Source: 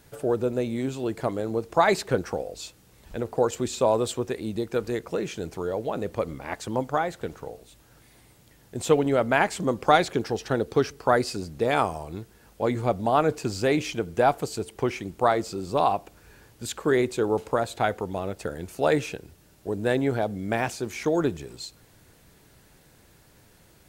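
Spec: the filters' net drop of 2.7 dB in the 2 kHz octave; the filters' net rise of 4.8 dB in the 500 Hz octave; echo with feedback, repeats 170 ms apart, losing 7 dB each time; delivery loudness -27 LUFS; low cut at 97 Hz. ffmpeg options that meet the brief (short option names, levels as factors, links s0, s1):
-af "highpass=97,equalizer=f=500:t=o:g=6,equalizer=f=2000:t=o:g=-4,aecho=1:1:170|340|510|680|850:0.447|0.201|0.0905|0.0407|0.0183,volume=0.562"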